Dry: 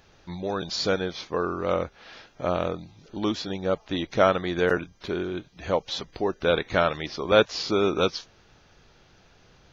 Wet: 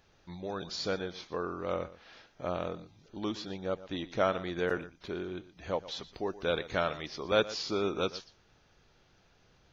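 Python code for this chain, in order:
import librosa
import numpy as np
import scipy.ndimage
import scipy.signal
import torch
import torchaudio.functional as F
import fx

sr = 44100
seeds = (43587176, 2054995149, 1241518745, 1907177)

y = fx.high_shelf(x, sr, hz=6400.0, db=7.5, at=(6.13, 7.72))
y = y + 10.0 ** (-16.5 / 20.0) * np.pad(y, (int(120 * sr / 1000.0), 0))[:len(y)]
y = y * 10.0 ** (-8.5 / 20.0)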